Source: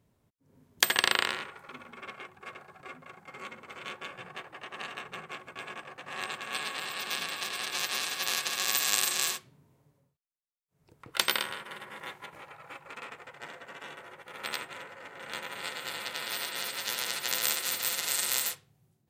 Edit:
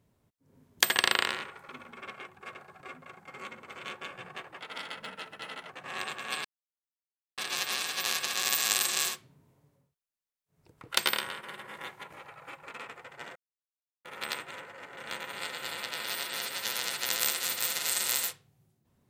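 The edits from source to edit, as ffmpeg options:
-filter_complex "[0:a]asplit=7[a][b][c][d][e][f][g];[a]atrim=end=4.584[h];[b]atrim=start=4.58:end=5.92,asetpts=PTS-STARTPTS,asetrate=52920,aresample=44100[i];[c]atrim=start=5.916:end=6.67,asetpts=PTS-STARTPTS,afade=t=out:st=0.75:d=0.004:c=hsin[j];[d]atrim=start=6.67:end=7.6,asetpts=PTS-STARTPTS,volume=0[k];[e]atrim=start=7.6:end=13.58,asetpts=PTS-STARTPTS,afade=t=in:d=0.004:c=hsin,afade=t=out:st=5.976:d=0.004:c=hsin[l];[f]atrim=start=13.58:end=14.27,asetpts=PTS-STARTPTS,volume=0[m];[g]atrim=start=14.27,asetpts=PTS-STARTPTS,afade=t=in:d=0.004:c=hsin[n];[h][i]acrossfade=d=0.004:c1=hsin:c2=hsin[o];[j][k][l][m][n]concat=n=5:v=0:a=1[p];[o][p]acrossfade=d=0.004:c1=hsin:c2=hsin"

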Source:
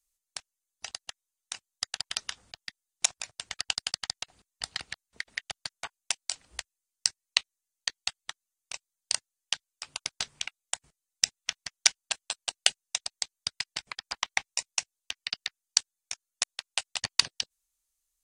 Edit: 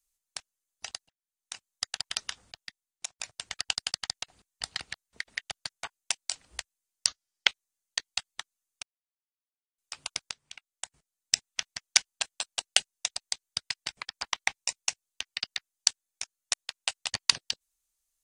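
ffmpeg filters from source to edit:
-filter_complex "[0:a]asplit=8[a][b][c][d][e][f][g][h];[a]atrim=end=1.09,asetpts=PTS-STARTPTS,afade=t=out:st=1.086:d=0.004:c=hsin[i];[b]atrim=start=1.09:end=3.19,asetpts=PTS-STARTPTS,afade=t=in:d=0.6,afade=t=out:st=1.34:d=0.76:silence=0.0749894[j];[c]atrim=start=3.19:end=7.064,asetpts=PTS-STARTPTS,afade=t=in:d=0.004:c=hsin:silence=0.0749894[k];[d]atrim=start=7.06:end=7.38,asetpts=PTS-STARTPTS,asetrate=33516,aresample=44100,atrim=end_sample=18568,asetpts=PTS-STARTPTS[l];[e]atrim=start=7.376:end=8.73,asetpts=PTS-STARTPTS,afade=t=out:st=1.35:d=0.004:c=hsin[m];[f]atrim=start=8.73:end=9.68,asetpts=PTS-STARTPTS,volume=0[n];[g]atrim=start=9.68:end=10.21,asetpts=PTS-STARTPTS,afade=t=in:d=0.004:c=hsin,afade=t=out:st=0.526:d=0.004:c=hsin:silence=0.0794328[o];[h]atrim=start=10.21,asetpts=PTS-STARTPTS,afade=t=in:d=1.15:silence=0.0794328[p];[i][j][k]concat=n=3:v=0:a=1[q];[q][l]acrossfade=d=0.004:c1=hsin:c2=hsin[r];[m][n][o][p]concat=n=4:v=0:a=1[s];[r][s]acrossfade=d=0.004:c1=hsin:c2=hsin"

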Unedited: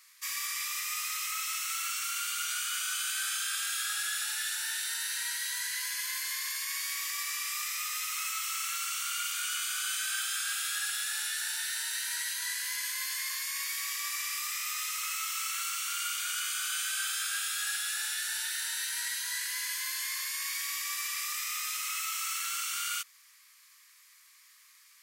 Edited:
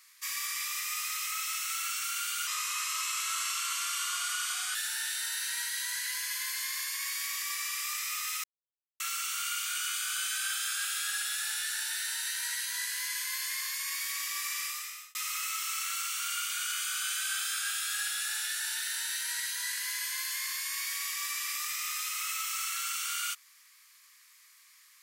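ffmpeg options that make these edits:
-filter_complex "[0:a]asplit=6[a][b][c][d][e][f];[a]atrim=end=2.474[g];[b]atrim=start=2.47:end=4.43,asetpts=PTS-STARTPTS,asetrate=37926,aresample=44100[h];[c]atrim=start=4.426:end=8.12,asetpts=PTS-STARTPTS,afade=t=out:st=3.69:d=0.004:c=hsin[i];[d]atrim=start=8.12:end=8.68,asetpts=PTS-STARTPTS,volume=0[j];[e]atrim=start=8.68:end=14.83,asetpts=PTS-STARTPTS,afade=t=in:d=0.004:c=hsin,afade=t=out:st=5.62:d=0.53[k];[f]atrim=start=14.83,asetpts=PTS-STARTPTS,afade=t=in:d=0.004:c=hsin[l];[g][h]acrossfade=d=0.004:c1=hsin:c2=hsin[m];[i][j][k][l]concat=n=4:v=0:a=1[n];[m][n]acrossfade=d=0.004:c1=hsin:c2=hsin"

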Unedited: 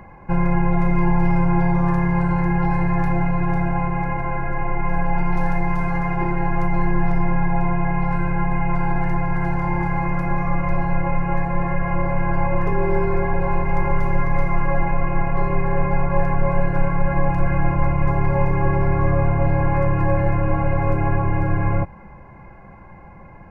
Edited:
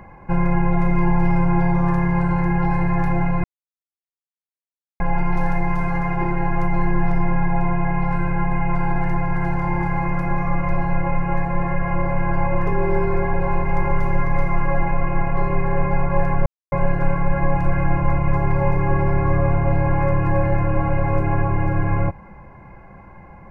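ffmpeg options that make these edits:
-filter_complex "[0:a]asplit=4[a][b][c][d];[a]atrim=end=3.44,asetpts=PTS-STARTPTS,afade=t=out:st=3.436:d=0.004:c=hsin[e];[b]atrim=start=3.44:end=5,asetpts=PTS-STARTPTS,volume=0[f];[c]atrim=start=5:end=16.46,asetpts=PTS-STARTPTS,afade=t=in:d=0.004:c=hsin,afade=t=out:st=11.456:d=0.004:c=hsin,apad=pad_dur=0.26[g];[d]atrim=start=16.46,asetpts=PTS-STARTPTS,afade=t=in:d=0.004:c=hsin[h];[e][f][g][h]concat=n=4:v=0:a=1"

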